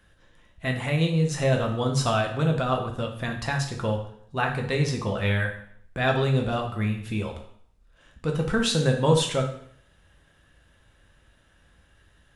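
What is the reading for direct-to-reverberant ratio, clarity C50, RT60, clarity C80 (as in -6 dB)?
1.5 dB, 7.0 dB, 0.65 s, 11.0 dB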